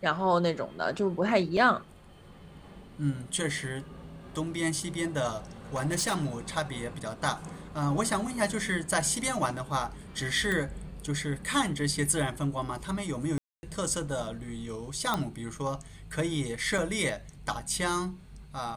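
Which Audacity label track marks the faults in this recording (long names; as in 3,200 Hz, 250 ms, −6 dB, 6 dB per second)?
1.570000	1.570000	drop-out 3.4 ms
5.750000	6.270000	clipping −24.5 dBFS
10.520000	10.520000	click −18 dBFS
13.380000	13.630000	drop-out 250 ms
15.140000	15.140000	click −14 dBFS
16.780000	16.780000	drop-out 4.3 ms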